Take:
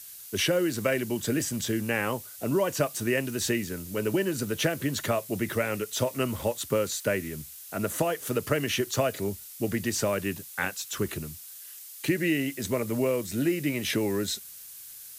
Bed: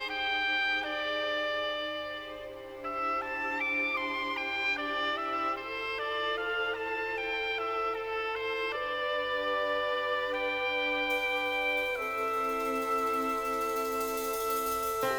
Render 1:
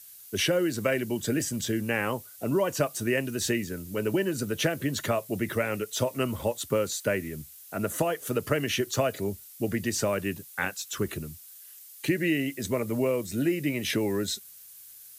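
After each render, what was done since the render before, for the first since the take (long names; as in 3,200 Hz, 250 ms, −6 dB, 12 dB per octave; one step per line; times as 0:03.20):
broadband denoise 6 dB, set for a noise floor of −45 dBFS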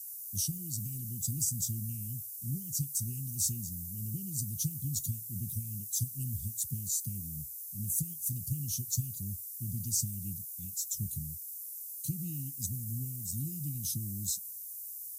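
inverse Chebyshev band-stop filter 610–1,600 Hz, stop band 80 dB
high-shelf EQ 8,800 Hz +7.5 dB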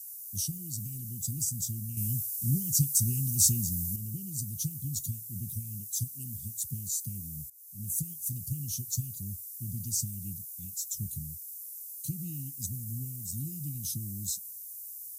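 0:01.97–0:03.96: clip gain +8 dB
0:06.07–0:06.56: high-pass filter 260 Hz → 79 Hz
0:07.50–0:07.94: fade in, from −17 dB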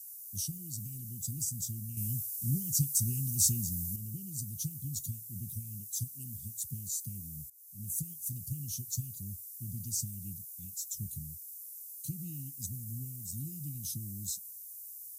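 level −3.5 dB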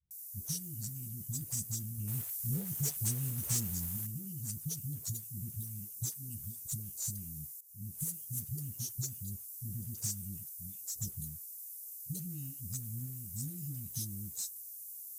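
soft clipping −29.5 dBFS, distortion −11 dB
all-pass dispersion highs, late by 108 ms, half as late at 380 Hz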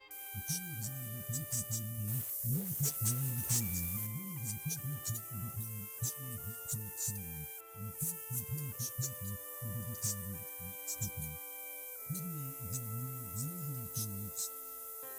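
mix in bed −22.5 dB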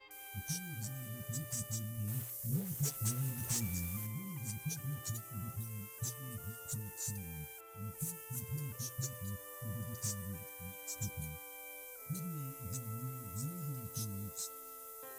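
high-shelf EQ 7,200 Hz −6.5 dB
mains-hum notches 60/120 Hz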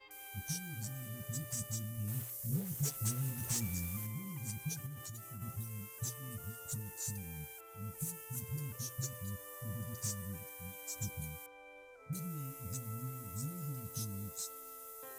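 0:04.86–0:05.42: downward compressor 10 to 1, threshold −42 dBFS
0:11.46–0:12.13: Bessel low-pass filter 1,900 Hz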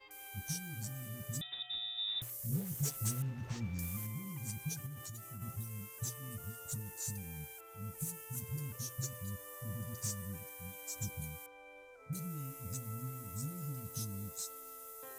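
0:01.41–0:02.22: voice inversion scrambler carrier 3,700 Hz
0:03.22–0:03.79: high-frequency loss of the air 230 metres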